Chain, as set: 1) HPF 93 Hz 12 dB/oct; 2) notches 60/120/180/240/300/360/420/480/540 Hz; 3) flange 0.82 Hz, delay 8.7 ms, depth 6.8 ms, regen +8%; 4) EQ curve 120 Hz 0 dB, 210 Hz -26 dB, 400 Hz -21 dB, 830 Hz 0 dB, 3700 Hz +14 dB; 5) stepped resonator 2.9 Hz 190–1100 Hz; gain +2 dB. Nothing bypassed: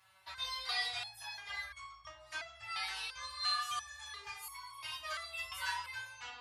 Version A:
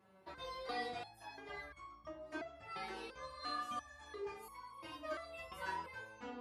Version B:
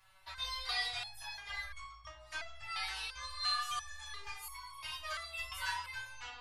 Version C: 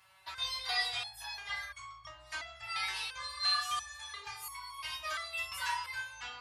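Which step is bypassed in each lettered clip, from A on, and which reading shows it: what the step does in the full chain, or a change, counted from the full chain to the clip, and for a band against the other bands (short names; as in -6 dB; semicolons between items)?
4, 500 Hz band +18.0 dB; 1, 125 Hz band +5.5 dB; 3, loudness change +3.5 LU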